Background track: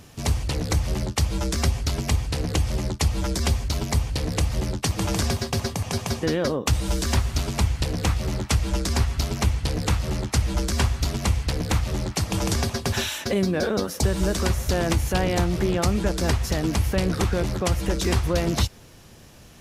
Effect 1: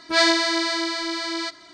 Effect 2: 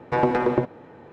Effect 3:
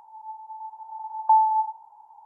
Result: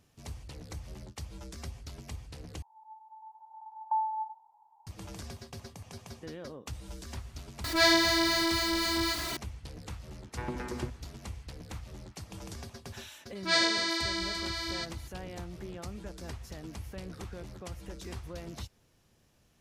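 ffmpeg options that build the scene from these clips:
ffmpeg -i bed.wav -i cue0.wav -i cue1.wav -i cue2.wav -filter_complex "[1:a]asplit=2[link_01][link_02];[0:a]volume=-19.5dB[link_03];[link_01]aeval=exprs='val(0)+0.5*0.0631*sgn(val(0))':channel_layout=same[link_04];[2:a]equalizer=frequency=610:width=1:gain=-12[link_05];[link_02]equalizer=frequency=490:width_type=o:width=2.6:gain=-5[link_06];[link_03]asplit=2[link_07][link_08];[link_07]atrim=end=2.624[link_09];[3:a]atrim=end=2.25,asetpts=PTS-STARTPTS,volume=-12dB[link_10];[link_08]atrim=start=4.866[link_11];[link_04]atrim=end=1.73,asetpts=PTS-STARTPTS,volume=-6.5dB,afade=type=in:duration=0.004:curve=hsin,afade=type=out:start_time=1.726:duration=0.004:curve=hsin,adelay=7640[link_12];[link_05]atrim=end=1.12,asetpts=PTS-STARTPTS,volume=-11.5dB,afade=type=in:duration=0.004:curve=hsin,afade=type=out:start_time=1.116:duration=0.004:curve=hsin,adelay=10250[link_13];[link_06]atrim=end=1.73,asetpts=PTS-STARTPTS,volume=-6.5dB,afade=type=in:duration=0.004:curve=hsin,afade=type=out:start_time=1.726:duration=0.004:curve=hsin,adelay=13350[link_14];[link_09][link_10]acrossfade=duration=0.004:curve1=hsin:curve2=hsin[link_15];[link_15][link_11]acrossfade=duration=0.004:curve1=hsin:curve2=hsin[link_16];[link_16][link_12][link_13][link_14]amix=inputs=4:normalize=0" out.wav

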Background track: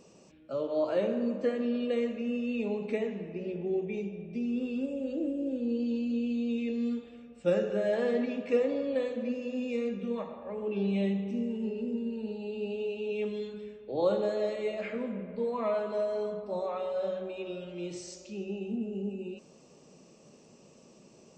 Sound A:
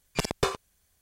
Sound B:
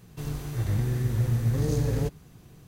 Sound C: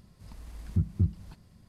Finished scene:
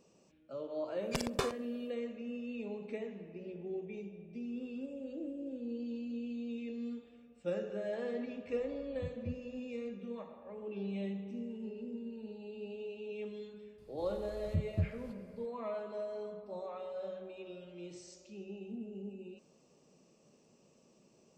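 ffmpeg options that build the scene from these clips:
ffmpeg -i bed.wav -i cue0.wav -i cue1.wav -i cue2.wav -filter_complex "[3:a]asplit=2[link_01][link_02];[0:a]volume=-9.5dB[link_03];[1:a]aecho=1:1:67|134|201:0.0631|0.0284|0.0128[link_04];[link_01]lowpass=1100[link_05];[link_04]atrim=end=1.01,asetpts=PTS-STARTPTS,volume=-8dB,afade=type=in:duration=0.1,afade=type=out:start_time=0.91:duration=0.1,adelay=960[link_06];[link_05]atrim=end=1.68,asetpts=PTS-STARTPTS,volume=-17dB,afade=type=in:duration=0.004:curve=hsin,afade=type=out:start_time=1.676:duration=0.004:curve=hsin,adelay=364266S[link_07];[link_02]atrim=end=1.68,asetpts=PTS-STARTPTS,volume=-7dB,afade=type=in:duration=0.004:curve=hsin,afade=type=out:start_time=1.676:duration=0.004:curve=hsin,adelay=13780[link_08];[link_03][link_06][link_07][link_08]amix=inputs=4:normalize=0" out.wav

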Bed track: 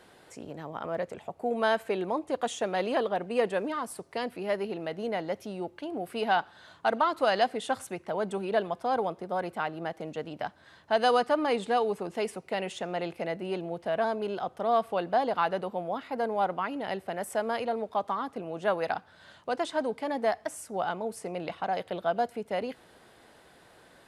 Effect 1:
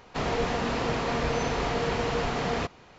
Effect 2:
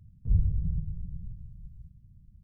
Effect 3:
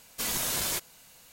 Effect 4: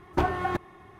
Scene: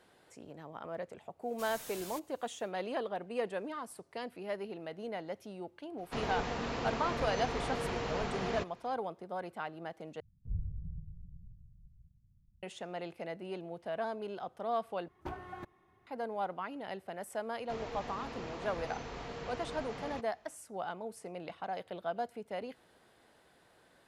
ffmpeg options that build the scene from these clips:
ffmpeg -i bed.wav -i cue0.wav -i cue1.wav -i cue2.wav -i cue3.wav -filter_complex "[1:a]asplit=2[link_01][link_02];[0:a]volume=-8.5dB[link_03];[3:a]asoftclip=type=tanh:threshold=-27dB[link_04];[link_03]asplit=3[link_05][link_06][link_07];[link_05]atrim=end=10.204[link_08];[2:a]atrim=end=2.43,asetpts=PTS-STARTPTS,volume=-13dB[link_09];[link_06]atrim=start=12.626:end=15.084[link_10];[4:a]atrim=end=0.99,asetpts=PTS-STARTPTS,volume=-17.5dB[link_11];[link_07]atrim=start=16.066[link_12];[link_04]atrim=end=1.32,asetpts=PTS-STARTPTS,volume=-15dB,afade=type=in:duration=0.1,afade=type=out:start_time=1.22:duration=0.1,adelay=1400[link_13];[link_01]atrim=end=2.98,asetpts=PTS-STARTPTS,volume=-8.5dB,afade=type=in:duration=0.02,afade=type=out:start_time=2.96:duration=0.02,adelay=5970[link_14];[link_02]atrim=end=2.98,asetpts=PTS-STARTPTS,volume=-15.5dB,afade=type=in:duration=0.004:curve=hsin,afade=type=out:start_time=2.976:duration=0.004:curve=hsin,adelay=17540[link_15];[link_08][link_09]acrossfade=duration=0.004:curve1=hsin:curve2=hsin[link_16];[link_16][link_10]acrossfade=duration=0.004:curve1=hsin:curve2=hsin[link_17];[link_17][link_11]acrossfade=duration=0.004:curve1=hsin:curve2=hsin[link_18];[link_18][link_12]acrossfade=duration=0.004:curve1=hsin:curve2=hsin[link_19];[link_19][link_13][link_14][link_15]amix=inputs=4:normalize=0" out.wav

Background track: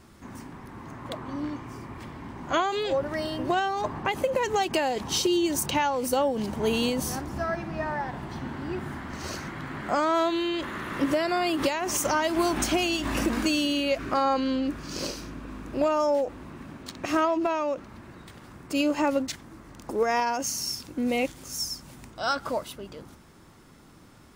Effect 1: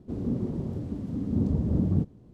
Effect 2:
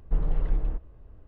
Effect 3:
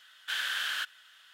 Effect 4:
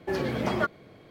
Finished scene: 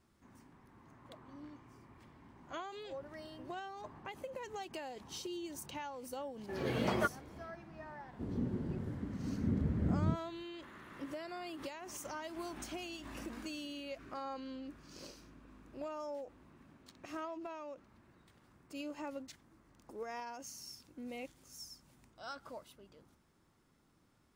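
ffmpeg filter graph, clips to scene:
ffmpeg -i bed.wav -i cue0.wav -i cue1.wav -i cue2.wav -i cue3.wav -filter_complex "[0:a]volume=-19dB[link_01];[4:a]dynaudnorm=framelen=150:gausssize=3:maxgain=11dB,atrim=end=1.1,asetpts=PTS-STARTPTS,volume=-15.5dB,afade=type=in:duration=0.004:curve=hsin,afade=type=out:start_time=1.096:duration=0.004:curve=hsin,adelay=6410[link_02];[1:a]atrim=end=2.33,asetpts=PTS-STARTPTS,volume=-8dB,afade=type=in:duration=0.004:curve=hsin,afade=type=out:start_time=2.326:duration=0.004:curve=hsin,adelay=8110[link_03];[link_01][link_02][link_03]amix=inputs=3:normalize=0" out.wav

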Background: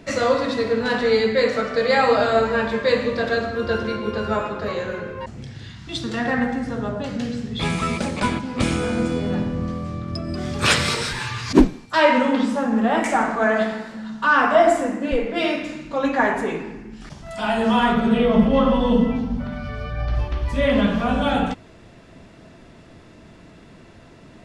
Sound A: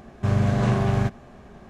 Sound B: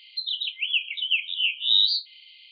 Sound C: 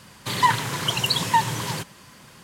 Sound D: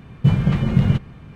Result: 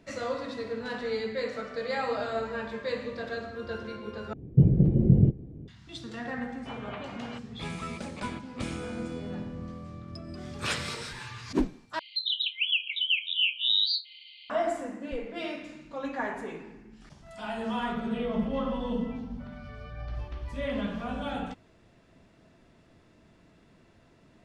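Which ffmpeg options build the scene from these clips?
ffmpeg -i bed.wav -i cue0.wav -i cue1.wav -i cue2.wav -i cue3.wav -filter_complex "[4:a]asplit=2[link_01][link_02];[0:a]volume=-13.5dB[link_03];[link_01]firequalizer=gain_entry='entry(220,0);entry(310,9);entry(1100,-29)':delay=0.05:min_phase=1[link_04];[link_02]highpass=frequency=480:width=0.5412,highpass=frequency=480:width=1.3066,equalizer=frequency=490:width_type=q:width=4:gain=-8,equalizer=frequency=760:width_type=q:width=4:gain=4,equalizer=frequency=1900:width_type=q:width=4:gain=-4,lowpass=frequency=3400:width=0.5412,lowpass=frequency=3400:width=1.3066[link_05];[2:a]alimiter=limit=-15.5dB:level=0:latency=1:release=224[link_06];[link_03]asplit=3[link_07][link_08][link_09];[link_07]atrim=end=4.334[link_10];[link_04]atrim=end=1.35,asetpts=PTS-STARTPTS,volume=-3.5dB[link_11];[link_08]atrim=start=5.676:end=11.994[link_12];[link_06]atrim=end=2.51,asetpts=PTS-STARTPTS,volume=-0.5dB[link_13];[link_09]atrim=start=14.496[link_14];[link_05]atrim=end=1.35,asetpts=PTS-STARTPTS,volume=-7.5dB,afade=type=in:duration=0.004:curve=hsin,afade=type=out:start_time=1.346:duration=0.004:curve=hsin,adelay=6410[link_15];[link_10][link_11]acrossfade=duration=0.004:curve1=hsin:curve2=hsin[link_16];[link_16][link_12]acrossfade=duration=0.004:curve1=hsin:curve2=hsin[link_17];[link_17][link_13]acrossfade=duration=0.004:curve1=hsin:curve2=hsin[link_18];[link_18][link_14]acrossfade=duration=0.004:curve1=hsin:curve2=hsin[link_19];[link_19][link_15]amix=inputs=2:normalize=0" out.wav

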